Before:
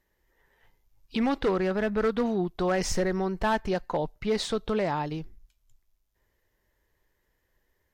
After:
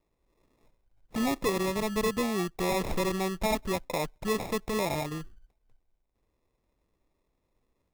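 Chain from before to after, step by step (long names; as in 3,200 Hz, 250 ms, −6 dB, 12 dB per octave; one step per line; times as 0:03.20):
decimation without filtering 29×
level −2.5 dB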